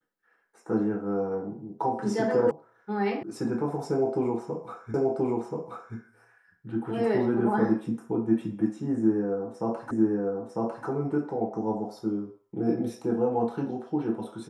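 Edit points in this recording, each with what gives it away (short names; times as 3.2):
2.51 sound cut off
3.23 sound cut off
4.94 repeat of the last 1.03 s
9.91 repeat of the last 0.95 s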